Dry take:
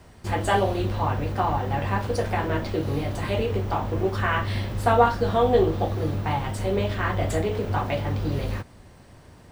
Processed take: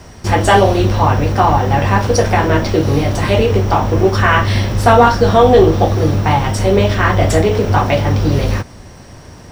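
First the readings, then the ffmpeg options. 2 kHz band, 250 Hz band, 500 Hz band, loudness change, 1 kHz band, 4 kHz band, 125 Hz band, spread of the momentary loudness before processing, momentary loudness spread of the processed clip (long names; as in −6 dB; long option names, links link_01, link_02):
+12.0 dB, +12.5 dB, +11.5 dB, +12.0 dB, +11.5 dB, +13.0 dB, +12.5 dB, 7 LU, 6 LU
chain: -af "highshelf=frequency=10000:gain=-3,apsyclip=14dB,equalizer=frequency=5600:width=7.1:gain=12.5,volume=-1.5dB"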